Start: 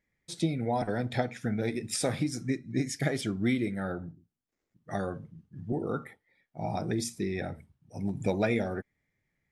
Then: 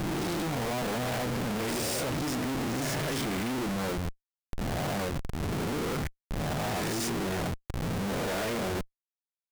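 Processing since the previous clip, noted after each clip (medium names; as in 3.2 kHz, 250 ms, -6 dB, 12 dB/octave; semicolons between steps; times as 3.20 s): reverse spectral sustain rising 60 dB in 1.37 s; Schmitt trigger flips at -37 dBFS; trim -1.5 dB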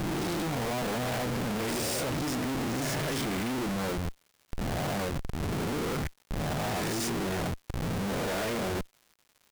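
crackle 230 per s -48 dBFS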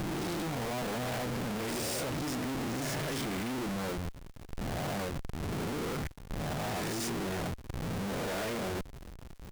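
in parallel at -11 dB: Schmitt trigger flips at -51.5 dBFS; on the sum: compression 2:1, threshold -33 dBFS, peak gain reduction 3.5 dB; trim -3 dB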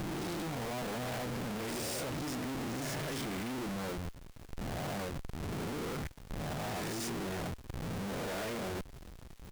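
crackle 320 per s -46 dBFS; trim -3 dB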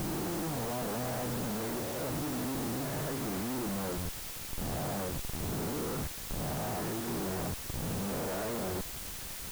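low-pass 1.4 kHz 12 dB/octave; in parallel at -5.5 dB: word length cut 6-bit, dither triangular; on the sum: trim -1 dB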